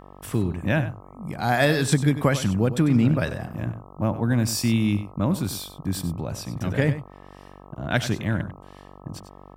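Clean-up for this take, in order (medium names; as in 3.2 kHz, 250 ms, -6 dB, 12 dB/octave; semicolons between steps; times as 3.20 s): de-hum 47.9 Hz, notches 27; inverse comb 96 ms -12.5 dB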